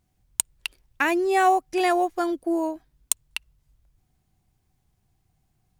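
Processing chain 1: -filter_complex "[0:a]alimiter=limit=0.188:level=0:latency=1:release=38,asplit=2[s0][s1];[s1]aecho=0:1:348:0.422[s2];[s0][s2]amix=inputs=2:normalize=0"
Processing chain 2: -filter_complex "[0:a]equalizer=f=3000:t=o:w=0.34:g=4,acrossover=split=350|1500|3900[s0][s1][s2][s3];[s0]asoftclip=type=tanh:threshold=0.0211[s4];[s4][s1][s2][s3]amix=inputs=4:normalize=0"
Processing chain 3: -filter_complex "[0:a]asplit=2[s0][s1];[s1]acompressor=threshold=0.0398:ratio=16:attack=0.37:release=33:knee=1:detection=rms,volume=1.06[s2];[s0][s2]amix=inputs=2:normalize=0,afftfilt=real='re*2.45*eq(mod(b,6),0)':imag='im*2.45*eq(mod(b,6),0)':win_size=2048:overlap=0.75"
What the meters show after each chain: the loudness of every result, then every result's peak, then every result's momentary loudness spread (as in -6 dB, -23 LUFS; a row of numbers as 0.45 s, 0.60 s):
-25.0 LUFS, -25.5 LUFS, -25.0 LUFS; -12.0 dBFS, -1.5 dBFS, -6.5 dBFS; 19 LU, 13 LU, 19 LU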